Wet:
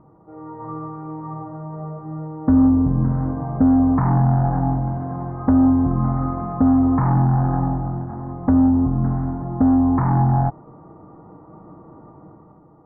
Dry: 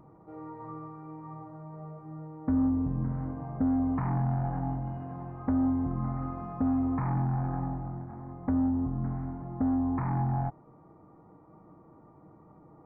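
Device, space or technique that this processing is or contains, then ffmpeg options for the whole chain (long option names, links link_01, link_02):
action camera in a waterproof case: -af "lowpass=frequency=1700:width=0.5412,lowpass=frequency=1700:width=1.3066,dynaudnorm=framelen=130:gausssize=9:maxgain=8.5dB,volume=3.5dB" -ar 48000 -c:a aac -b:a 128k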